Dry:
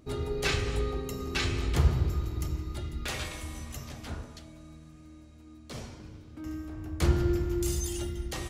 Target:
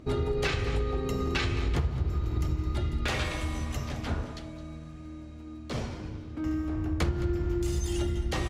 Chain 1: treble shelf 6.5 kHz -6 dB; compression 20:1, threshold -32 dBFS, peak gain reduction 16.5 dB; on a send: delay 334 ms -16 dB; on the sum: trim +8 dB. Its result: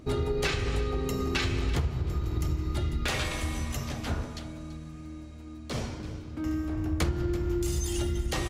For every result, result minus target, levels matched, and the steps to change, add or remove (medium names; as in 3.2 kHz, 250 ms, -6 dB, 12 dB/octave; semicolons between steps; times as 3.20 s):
echo 118 ms late; 8 kHz band +5.0 dB
change: delay 216 ms -16 dB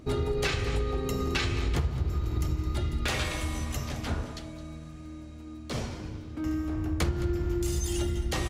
8 kHz band +4.5 dB
change: treble shelf 6.5 kHz -15.5 dB